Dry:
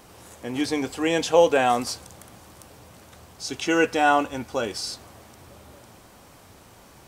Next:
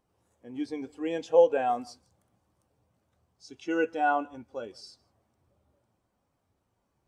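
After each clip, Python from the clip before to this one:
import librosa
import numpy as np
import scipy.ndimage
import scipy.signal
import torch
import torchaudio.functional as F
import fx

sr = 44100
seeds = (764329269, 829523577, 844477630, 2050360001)

y = x + 10.0 ** (-18.0 / 20.0) * np.pad(x, (int(159 * sr / 1000.0), 0))[:len(x)]
y = fx.spectral_expand(y, sr, expansion=1.5)
y = y * librosa.db_to_amplitude(-4.0)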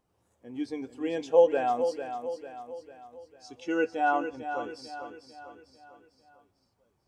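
y = fx.echo_feedback(x, sr, ms=448, feedback_pct=47, wet_db=-9)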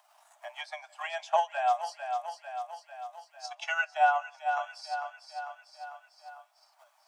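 y = fx.transient(x, sr, attack_db=10, sustain_db=-3)
y = scipy.signal.sosfilt(scipy.signal.cheby1(10, 1.0, 600.0, 'highpass', fs=sr, output='sos'), y)
y = fx.band_squash(y, sr, depth_pct=40)
y = y * librosa.db_to_amplitude(3.0)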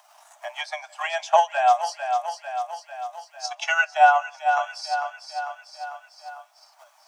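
y = fx.peak_eq(x, sr, hz=6000.0, db=4.5, octaves=0.4)
y = y * librosa.db_to_amplitude(8.5)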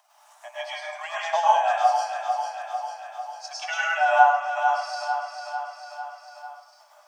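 y = fx.rev_plate(x, sr, seeds[0], rt60_s=0.91, hf_ratio=0.55, predelay_ms=90, drr_db=-6.0)
y = y * librosa.db_to_amplitude(-8.0)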